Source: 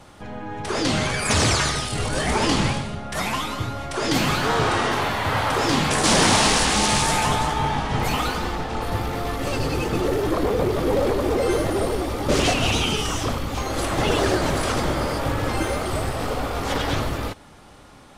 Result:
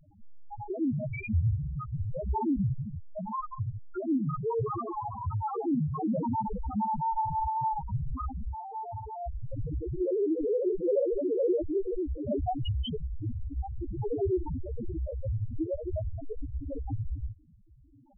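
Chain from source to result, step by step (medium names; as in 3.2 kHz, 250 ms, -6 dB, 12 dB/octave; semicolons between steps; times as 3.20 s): 8.53–9.26 s: tilt EQ +2.5 dB/octave; loudest bins only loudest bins 1; trim +3.5 dB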